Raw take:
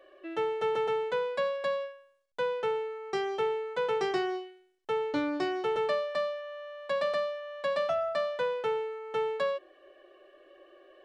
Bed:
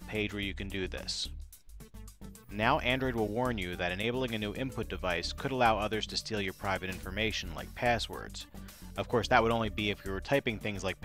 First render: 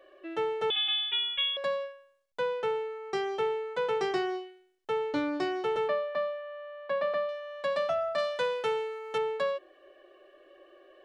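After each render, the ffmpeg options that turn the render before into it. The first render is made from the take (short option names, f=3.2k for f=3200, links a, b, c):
-filter_complex "[0:a]asettb=1/sr,asplit=3[a][b][c];[a]atrim=end=0.704[d];[b]atrim=start=0.7:end=1.57,asetpts=PTS-STARTPTS,afade=t=in:d=0.004:c=qsin,afade=t=out:st=0.866:d=0.004:c=qsin,lowpass=f=3.3k:t=q:w=0.5098,lowpass=f=3.3k:t=q:w=0.6013,lowpass=f=3.3k:t=q:w=0.9,lowpass=f=3.3k:t=q:w=2.563,afreqshift=-3900[e];[c]atrim=start=1.566[f];[d][e]acrossfade=d=0.004:c1=hsin:c2=qsin[g];[g][f]acrossfade=d=0.004:c1=qsin:c2=hsin,asettb=1/sr,asplit=3[h][i][j];[h]atrim=end=5.884[k];[i]atrim=start=5.88:end=7.29,asetpts=PTS-STARTPTS,afade=t=in:d=0.004:c=qsin,afade=t=out:st=1.406:d=0.004:c=qsin,highpass=130,lowpass=2.5k[l];[j]atrim=start=7.286[m];[k][l]acrossfade=d=0.004:c1=hsin:c2=qsin[n];[n][m]acrossfade=d=0.004:c1=qsin:c2=hsin,asettb=1/sr,asplit=3[o][p][q];[o]atrim=end=8.184[r];[p]atrim=start=8.18:end=9.18,asetpts=PTS-STARTPTS,afade=t=in:d=0.004:c=qsin,afade=t=out:st=0.996:d=0.004:c=qsin,highshelf=f=3.1k:g=11[s];[q]atrim=start=9.176[t];[r][s]acrossfade=d=0.004:c1=hsin:c2=qsin[u];[u][t]acrossfade=d=0.004:c1=qsin:c2=hsin"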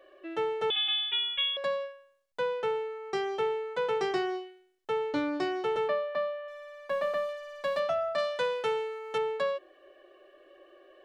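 -filter_complex "[0:a]asettb=1/sr,asplit=3[a][b][c];[a]atrim=end=6.484[d];[b]atrim=start=6.48:end=7.8,asetpts=PTS-STARTPTS,afade=t=in:d=0.004:c=qsin,afade=t=out:st=1.316:d=0.004:c=qsin,aeval=exprs='sgn(val(0))*max(abs(val(0))-0.00282,0)':c=same[e];[c]atrim=start=7.796[f];[d][e]acrossfade=d=0.004:c1=hsin:c2=qsin[g];[g][f]acrossfade=d=0.004:c1=qsin:c2=hsin"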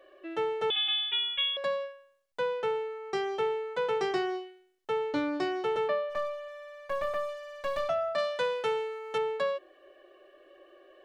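-filter_complex "[0:a]asplit=3[a][b][c];[a]afade=t=out:st=6.09:d=0.02[d];[b]aeval=exprs='clip(val(0),-1,0.0119)':c=same,afade=t=in:st=6.09:d=0.02,afade=t=out:st=7.88:d=0.02[e];[c]afade=t=in:st=7.88:d=0.02[f];[d][e][f]amix=inputs=3:normalize=0"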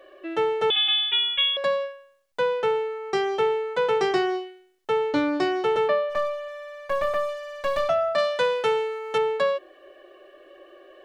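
-af "volume=7dB"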